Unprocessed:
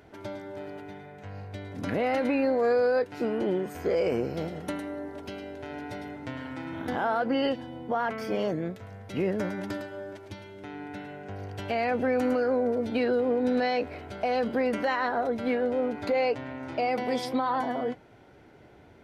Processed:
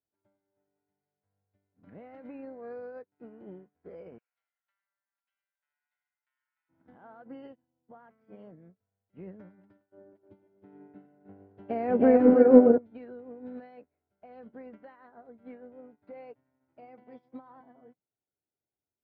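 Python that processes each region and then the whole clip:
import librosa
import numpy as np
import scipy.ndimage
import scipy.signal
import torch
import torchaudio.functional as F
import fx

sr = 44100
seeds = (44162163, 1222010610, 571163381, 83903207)

y = fx.chain(x, sr, fx.highpass(hz=1200.0, slope=24),
    fx.high_shelf(hz=2500.0, db=10.0),
    fx.echo_single(ms=706, db=-17.5), at=(4.18, 6.69))
y = fx.chain(y, sr, fx.peak_eq(hz=360.0, db=12.0, octaves=2.4),
    fx.echo_single(ms=311, db=-6.0), at=(9.92, 12.78))
y = scipy.signal.sosfilt(scipy.signal.butter(2, 1800.0, 'lowpass', fs=sr, output='sos'), y)
y = fx.dynamic_eq(y, sr, hz=180.0, q=1.5, threshold_db=-45.0, ratio=4.0, max_db=7)
y = fx.upward_expand(y, sr, threshold_db=-39.0, expansion=2.5)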